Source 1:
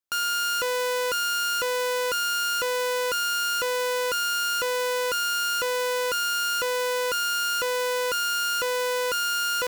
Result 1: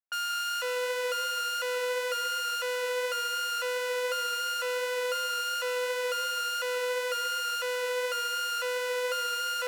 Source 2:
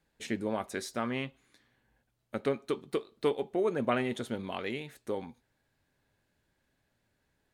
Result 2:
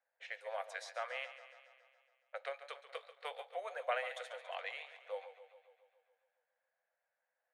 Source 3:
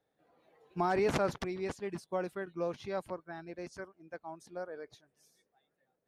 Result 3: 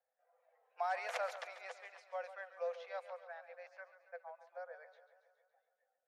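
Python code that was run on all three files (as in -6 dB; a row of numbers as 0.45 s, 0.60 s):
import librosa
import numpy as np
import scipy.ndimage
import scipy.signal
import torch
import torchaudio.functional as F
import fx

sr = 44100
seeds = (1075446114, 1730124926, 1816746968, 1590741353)

y = fx.env_lowpass(x, sr, base_hz=1500.0, full_db=-29.0)
y = scipy.signal.sosfilt(scipy.signal.cheby1(6, 6, 490.0, 'highpass', fs=sr, output='sos'), y)
y = fx.echo_warbled(y, sr, ms=139, feedback_pct=63, rate_hz=2.8, cents=56, wet_db=-13)
y = F.gain(torch.from_numpy(y), -2.5).numpy()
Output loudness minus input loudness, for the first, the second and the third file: -5.5 LU, -9.5 LU, -8.0 LU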